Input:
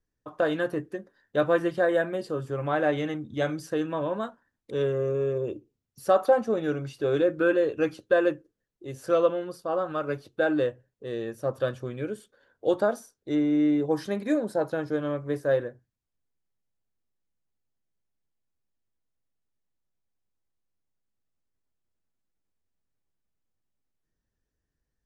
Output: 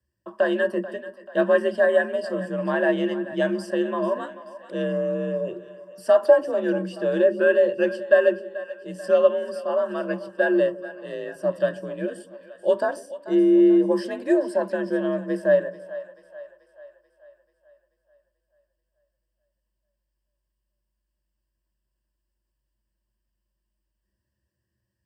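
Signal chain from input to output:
echo with a time of its own for lows and highs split 470 Hz, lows 144 ms, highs 436 ms, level −15 dB
frequency shifter +49 Hz
EQ curve with evenly spaced ripples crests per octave 1.3, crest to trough 13 dB

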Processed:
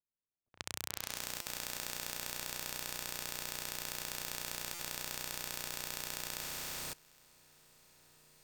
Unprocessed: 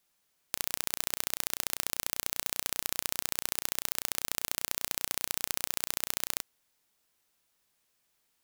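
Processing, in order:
adaptive Wiener filter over 9 samples
parametric band 11,000 Hz −13 dB 0.21 octaves
low-pass that shuts in the quiet parts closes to 520 Hz, open at −42 dBFS
parametric band 96 Hz +7 dB 0.93 octaves
on a send: feedback delay with all-pass diffusion 468 ms, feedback 47%, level −3 dB
on the sum: output level in coarse steps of 22 dB
buffer that repeats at 0:01.41/0:04.74, samples 256, times 8
level +2 dB

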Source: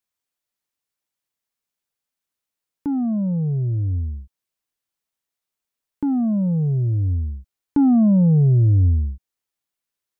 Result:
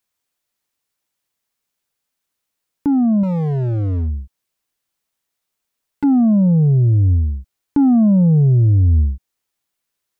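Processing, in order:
0:03.23–0:06.04: hard clipping −24.5 dBFS, distortion −18 dB
boost into a limiter +15.5 dB
level −8.5 dB

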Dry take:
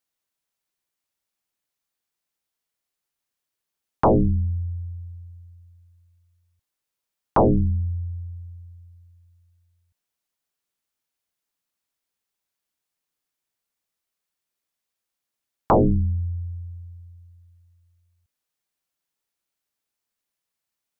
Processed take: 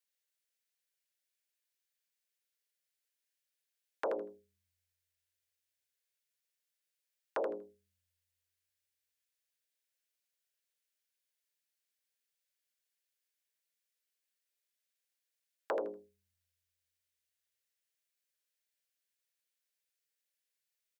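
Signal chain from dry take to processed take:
high-pass filter 500 Hz 24 dB per octave
flat-topped bell 930 Hz −14.5 dB 1.1 octaves
downward compressor, threshold −28 dBFS, peak gain reduction 7 dB
on a send: repeating echo 80 ms, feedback 18%, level −8 dB
on the sum: level −4 dB

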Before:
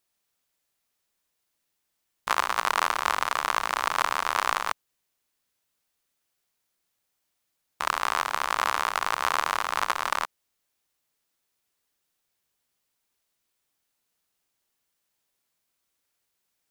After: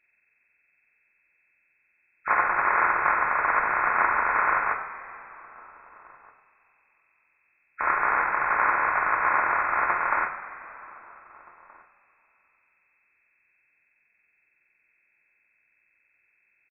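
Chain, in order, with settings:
hearing-aid frequency compression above 1,300 Hz 4 to 1
slap from a distant wall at 270 metres, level −23 dB
coupled-rooms reverb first 0.48 s, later 3.3 s, from −16 dB, DRR 1 dB

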